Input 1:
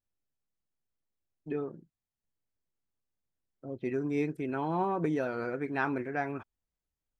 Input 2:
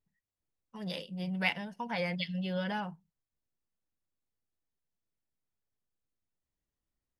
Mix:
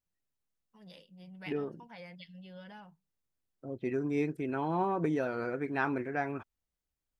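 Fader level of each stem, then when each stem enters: -0.5, -15.0 dB; 0.00, 0.00 s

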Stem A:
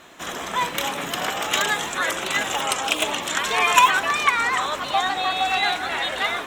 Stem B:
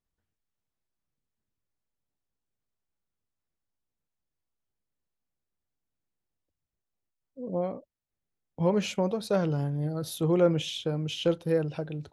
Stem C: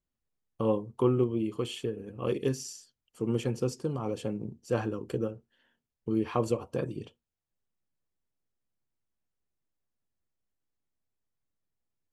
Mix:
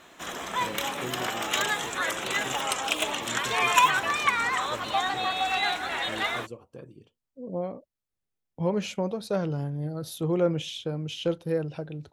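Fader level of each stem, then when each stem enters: -5.0, -1.5, -12.5 dB; 0.00, 0.00, 0.00 s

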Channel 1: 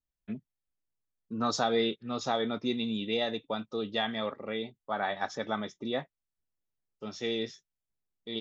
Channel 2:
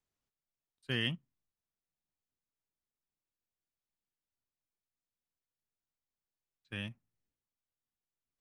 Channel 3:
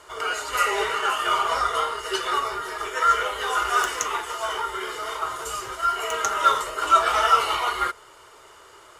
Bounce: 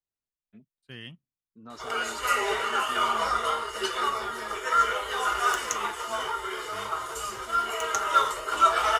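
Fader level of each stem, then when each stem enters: -15.0, -9.0, -3.0 dB; 0.25, 0.00, 1.70 s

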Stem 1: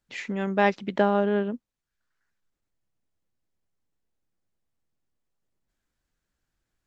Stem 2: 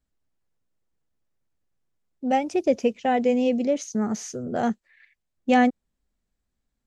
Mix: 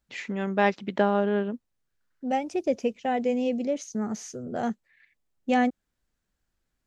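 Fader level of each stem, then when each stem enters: -1.0, -4.5 dB; 0.00, 0.00 s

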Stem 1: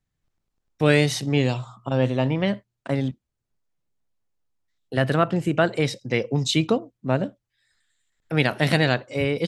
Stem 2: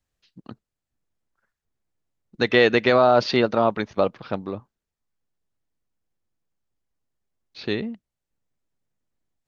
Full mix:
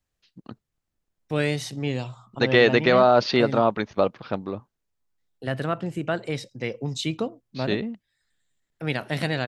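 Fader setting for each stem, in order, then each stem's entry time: -6.5, -0.5 dB; 0.50, 0.00 s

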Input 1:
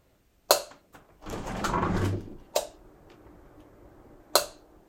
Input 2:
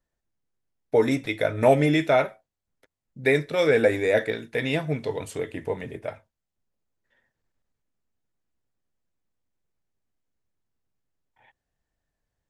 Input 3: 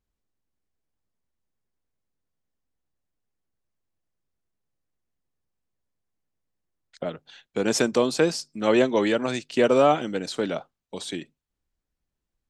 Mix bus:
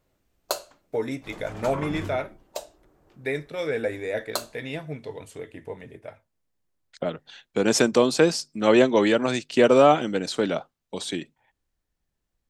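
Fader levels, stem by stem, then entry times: -7.0, -7.5, +2.5 dB; 0.00, 0.00, 0.00 s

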